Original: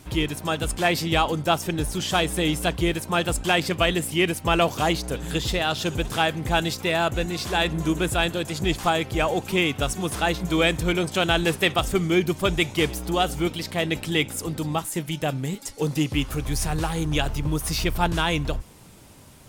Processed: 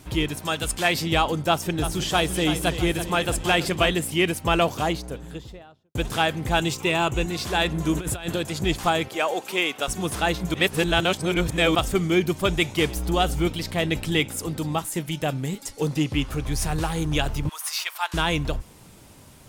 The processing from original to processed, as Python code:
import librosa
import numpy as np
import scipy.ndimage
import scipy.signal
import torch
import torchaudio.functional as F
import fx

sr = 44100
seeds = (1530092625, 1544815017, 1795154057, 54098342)

y = fx.tilt_shelf(x, sr, db=-3.5, hz=1300.0, at=(0.4, 0.95))
y = fx.echo_split(y, sr, split_hz=330.0, low_ms=169, high_ms=330, feedback_pct=52, wet_db=-10, at=(1.49, 3.89))
y = fx.studio_fade_out(y, sr, start_s=4.47, length_s=1.48)
y = fx.ripple_eq(y, sr, per_octave=0.7, db=7, at=(6.61, 7.26))
y = fx.over_compress(y, sr, threshold_db=-27.0, ratio=-0.5, at=(7.93, 8.37))
y = fx.highpass(y, sr, hz=410.0, slope=12, at=(9.08, 9.88))
y = fx.low_shelf(y, sr, hz=77.0, db=11.5, at=(12.96, 14.2))
y = fx.high_shelf(y, sr, hz=8500.0, db=-8.0, at=(15.88, 16.58))
y = fx.cheby2_highpass(y, sr, hz=200.0, order=4, stop_db=70, at=(17.49, 18.14))
y = fx.edit(y, sr, fx.reverse_span(start_s=10.54, length_s=1.21), tone=tone)